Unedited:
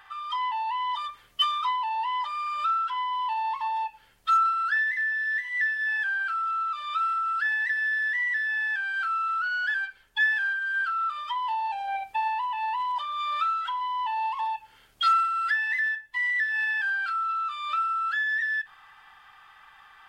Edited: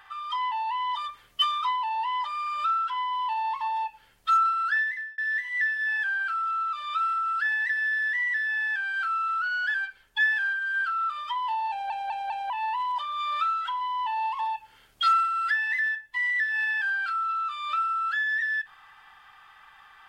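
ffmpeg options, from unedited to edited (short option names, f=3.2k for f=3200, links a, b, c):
-filter_complex "[0:a]asplit=6[a][b][c][d][e][f];[a]atrim=end=5.18,asetpts=PTS-STARTPTS,afade=t=out:st=4.79:d=0.39[g];[b]atrim=start=5.18:end=11.902,asetpts=PTS-STARTPTS,afade=t=in:d=0.004:c=hsin[h];[c]atrim=start=11.698:end=11.902[i];[d]atrim=start=11.698:end=11.902[j];[e]atrim=start=11.698:end=11.902[k];[f]atrim=start=12.498[l];[g][h]concat=n=2:v=0:a=1[m];[m][i]acrossfade=d=0.004:c1=hsin:c2=hsin[n];[n][j]acrossfade=d=0.004:c1=hsin:c2=hsin[o];[o][k]acrossfade=d=0.004:c1=hsin:c2=hsin[p];[p][l]acrossfade=d=0.004:c1=hsin:c2=hsin"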